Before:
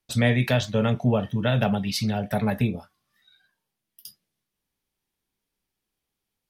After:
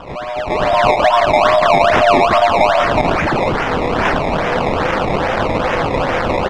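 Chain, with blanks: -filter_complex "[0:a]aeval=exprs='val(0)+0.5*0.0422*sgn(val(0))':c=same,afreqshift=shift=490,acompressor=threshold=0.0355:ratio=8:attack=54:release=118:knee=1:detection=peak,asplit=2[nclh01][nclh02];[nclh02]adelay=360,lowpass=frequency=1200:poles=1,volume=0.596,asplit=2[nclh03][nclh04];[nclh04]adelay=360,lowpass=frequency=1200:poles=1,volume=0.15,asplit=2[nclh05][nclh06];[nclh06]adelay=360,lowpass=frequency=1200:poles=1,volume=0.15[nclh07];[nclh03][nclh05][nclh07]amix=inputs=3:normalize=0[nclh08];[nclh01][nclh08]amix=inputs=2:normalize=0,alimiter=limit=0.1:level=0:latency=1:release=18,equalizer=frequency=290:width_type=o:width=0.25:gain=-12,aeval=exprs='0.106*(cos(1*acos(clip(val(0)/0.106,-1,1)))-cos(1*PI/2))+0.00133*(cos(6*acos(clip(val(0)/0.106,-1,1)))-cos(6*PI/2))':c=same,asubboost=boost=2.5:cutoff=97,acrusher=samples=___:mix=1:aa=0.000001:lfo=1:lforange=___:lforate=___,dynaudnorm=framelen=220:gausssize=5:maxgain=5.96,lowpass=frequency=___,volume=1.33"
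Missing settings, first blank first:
20, 20, 2.4, 2800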